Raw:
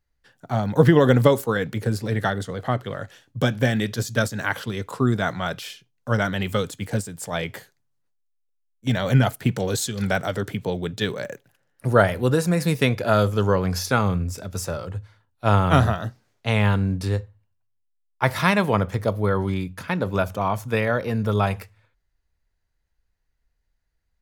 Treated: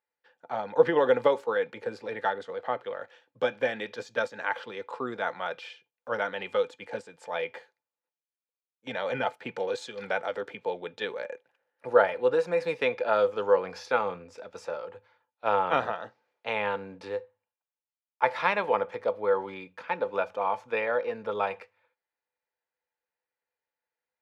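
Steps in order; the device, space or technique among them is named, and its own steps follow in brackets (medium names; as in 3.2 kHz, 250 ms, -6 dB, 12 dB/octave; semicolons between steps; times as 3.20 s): tin-can telephone (band-pass 470–3100 Hz; small resonant body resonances 500/870/2400 Hz, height 12 dB, ringing for 85 ms); trim -5.5 dB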